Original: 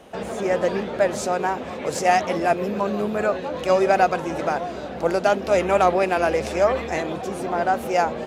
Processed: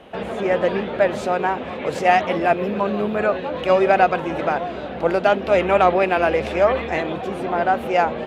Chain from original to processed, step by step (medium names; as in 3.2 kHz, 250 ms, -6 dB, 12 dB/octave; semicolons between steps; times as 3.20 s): resonant high shelf 4.4 kHz -10 dB, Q 1.5; trim +2 dB